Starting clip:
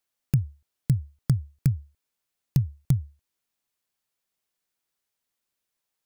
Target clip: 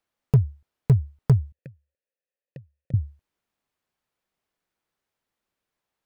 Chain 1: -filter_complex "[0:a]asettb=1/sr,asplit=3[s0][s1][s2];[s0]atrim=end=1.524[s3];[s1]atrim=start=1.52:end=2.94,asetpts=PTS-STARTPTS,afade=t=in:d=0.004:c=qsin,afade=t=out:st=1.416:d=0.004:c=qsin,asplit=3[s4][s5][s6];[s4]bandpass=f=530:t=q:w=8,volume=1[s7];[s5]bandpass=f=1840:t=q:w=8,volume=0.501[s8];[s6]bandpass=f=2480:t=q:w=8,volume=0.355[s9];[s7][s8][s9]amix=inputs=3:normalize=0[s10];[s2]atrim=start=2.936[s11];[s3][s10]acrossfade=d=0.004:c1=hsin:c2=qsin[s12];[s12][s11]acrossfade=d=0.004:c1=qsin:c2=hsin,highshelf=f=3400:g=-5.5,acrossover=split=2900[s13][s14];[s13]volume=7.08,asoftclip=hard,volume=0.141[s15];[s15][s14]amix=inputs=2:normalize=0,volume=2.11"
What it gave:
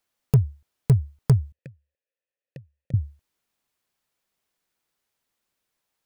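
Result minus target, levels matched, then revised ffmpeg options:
8 kHz band +8.0 dB
-filter_complex "[0:a]asettb=1/sr,asplit=3[s0][s1][s2];[s0]atrim=end=1.524[s3];[s1]atrim=start=1.52:end=2.94,asetpts=PTS-STARTPTS,afade=t=in:d=0.004:c=qsin,afade=t=out:st=1.416:d=0.004:c=qsin,asplit=3[s4][s5][s6];[s4]bandpass=f=530:t=q:w=8,volume=1[s7];[s5]bandpass=f=1840:t=q:w=8,volume=0.501[s8];[s6]bandpass=f=2480:t=q:w=8,volume=0.355[s9];[s7][s8][s9]amix=inputs=3:normalize=0[s10];[s2]atrim=start=2.936[s11];[s3][s10]acrossfade=d=0.004:c1=hsin:c2=qsin[s12];[s12][s11]acrossfade=d=0.004:c1=qsin:c2=hsin,highshelf=f=3400:g=-15,acrossover=split=2900[s13][s14];[s13]volume=7.08,asoftclip=hard,volume=0.141[s15];[s15][s14]amix=inputs=2:normalize=0,volume=2.11"

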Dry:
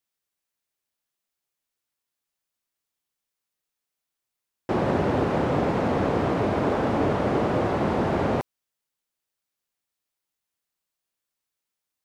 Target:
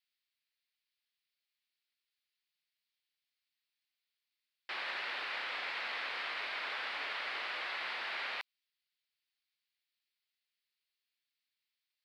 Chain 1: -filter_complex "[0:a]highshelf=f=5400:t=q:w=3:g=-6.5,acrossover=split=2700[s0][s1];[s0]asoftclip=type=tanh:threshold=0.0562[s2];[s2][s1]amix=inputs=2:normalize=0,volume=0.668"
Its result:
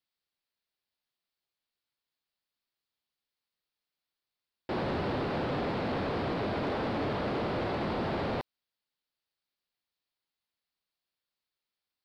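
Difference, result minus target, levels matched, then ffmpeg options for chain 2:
2 kHz band -9.0 dB
-filter_complex "[0:a]highpass=f=2100:t=q:w=1.6,highshelf=f=5400:t=q:w=3:g=-6.5,acrossover=split=2700[s0][s1];[s0]asoftclip=type=tanh:threshold=0.0562[s2];[s2][s1]amix=inputs=2:normalize=0,volume=0.668"

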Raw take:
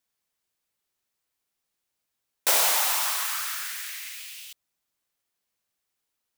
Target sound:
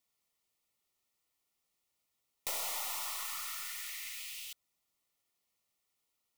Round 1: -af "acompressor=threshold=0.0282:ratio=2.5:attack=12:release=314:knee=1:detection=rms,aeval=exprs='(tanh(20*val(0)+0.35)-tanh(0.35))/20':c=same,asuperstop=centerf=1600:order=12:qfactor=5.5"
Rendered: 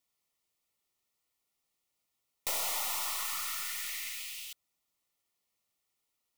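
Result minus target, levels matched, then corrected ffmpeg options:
compression: peak gain reduction -5 dB
-af "acompressor=threshold=0.0112:ratio=2.5:attack=12:release=314:knee=1:detection=rms,aeval=exprs='(tanh(20*val(0)+0.35)-tanh(0.35))/20':c=same,asuperstop=centerf=1600:order=12:qfactor=5.5"

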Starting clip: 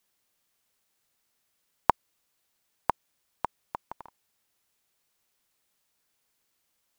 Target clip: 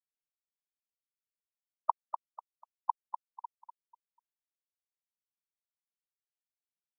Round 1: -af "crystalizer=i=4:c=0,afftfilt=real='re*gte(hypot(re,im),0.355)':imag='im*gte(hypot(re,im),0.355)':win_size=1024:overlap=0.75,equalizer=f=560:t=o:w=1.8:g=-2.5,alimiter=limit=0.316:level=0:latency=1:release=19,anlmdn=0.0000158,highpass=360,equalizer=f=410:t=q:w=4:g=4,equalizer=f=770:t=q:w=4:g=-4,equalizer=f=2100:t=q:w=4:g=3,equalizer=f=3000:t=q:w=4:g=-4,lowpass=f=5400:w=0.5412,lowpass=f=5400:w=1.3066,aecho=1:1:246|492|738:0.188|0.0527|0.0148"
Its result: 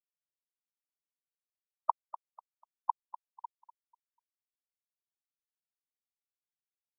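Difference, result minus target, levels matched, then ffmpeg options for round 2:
echo-to-direct -6.5 dB
-af "crystalizer=i=4:c=0,afftfilt=real='re*gte(hypot(re,im),0.355)':imag='im*gte(hypot(re,im),0.355)':win_size=1024:overlap=0.75,equalizer=f=560:t=o:w=1.8:g=-2.5,alimiter=limit=0.316:level=0:latency=1:release=19,anlmdn=0.0000158,highpass=360,equalizer=f=410:t=q:w=4:g=4,equalizer=f=770:t=q:w=4:g=-4,equalizer=f=2100:t=q:w=4:g=3,equalizer=f=3000:t=q:w=4:g=-4,lowpass=f=5400:w=0.5412,lowpass=f=5400:w=1.3066,aecho=1:1:246|492|738:0.398|0.111|0.0312"

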